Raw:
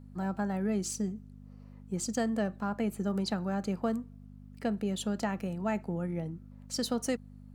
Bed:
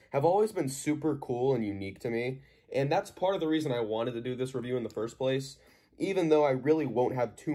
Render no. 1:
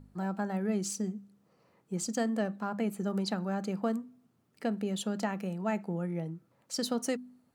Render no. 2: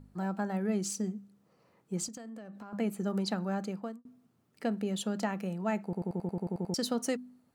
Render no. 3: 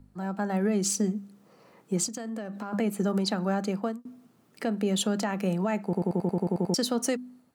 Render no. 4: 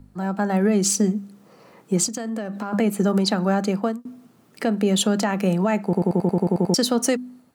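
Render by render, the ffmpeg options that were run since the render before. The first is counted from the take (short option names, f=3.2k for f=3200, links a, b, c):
-af "bandreject=f=50:t=h:w=4,bandreject=f=100:t=h:w=4,bandreject=f=150:t=h:w=4,bandreject=f=200:t=h:w=4,bandreject=f=250:t=h:w=4"
-filter_complex "[0:a]asettb=1/sr,asplit=3[a][b][c];[a]atrim=end=2.084[d];[b]atrim=start=2.08:end=2.73,asetpts=PTS-STARTPTS,afade=t=in:d=0.004:c=qsin,afade=t=out:st=0.646:d=0.004:c=qsin,acompressor=threshold=-41dB:ratio=16:attack=3.2:release=140:knee=1:detection=peak[e];[c]atrim=start=2.726[f];[d][e]acrossfade=d=0.004:c1=hsin:c2=qsin[g];[g][f]acrossfade=d=0.004:c1=qsin:c2=hsin,asplit=12[h][i][j][k][l][m][n][o][p][q][r][s];[h]atrim=end=4.05,asetpts=PTS-STARTPTS,afade=t=out:st=3.57:d=0.48[t];[i]atrim=start=4.05:end=5.932,asetpts=PTS-STARTPTS,afade=t=in:d=0.004:c=hsin[u];[j]atrim=start=5.838:end=5.932[v];[k]atrim=start=5.838:end=5.932[w];[l]atrim=start=5.838:end=5.932[x];[m]atrim=start=5.838:end=5.932[y];[n]atrim=start=5.838:end=5.932[z];[o]atrim=start=5.838:end=5.932[aa];[p]atrim=start=5.838:end=5.932[ab];[q]atrim=start=5.838:end=5.932[ac];[r]atrim=start=5.838:end=5.932[ad];[s]atrim=start=6.738[ae];[t][u]concat=n=2:v=0:a=1[af];[af][v]acrossfade=d=0.004:c1=hsin:c2=hsin[ag];[ag][w]acrossfade=d=0.004:c1=hsin:c2=hsin[ah];[ah][x]acrossfade=d=0.004:c1=hsin:c2=hsin[ai];[ai][y]acrossfade=d=0.004:c1=hsin:c2=hsin[aj];[aj][z]acrossfade=d=0.004:c1=hsin:c2=hsin[ak];[ak][aa]acrossfade=d=0.004:c1=hsin:c2=hsin[al];[al][ab]acrossfade=d=0.004:c1=hsin:c2=hsin[am];[am][ac]acrossfade=d=0.004:c1=hsin:c2=hsin[an];[an][ad]acrossfade=d=0.004:c1=hsin:c2=hsin[ao];[ao][ae]acrossfade=d=0.004:c1=hsin:c2=hsin"
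-filter_complex "[0:a]acrossover=split=150[a][b];[b]dynaudnorm=f=220:g=5:m=11dB[c];[a][c]amix=inputs=2:normalize=0,alimiter=limit=-17.5dB:level=0:latency=1:release=286"
-af "volume=7dB"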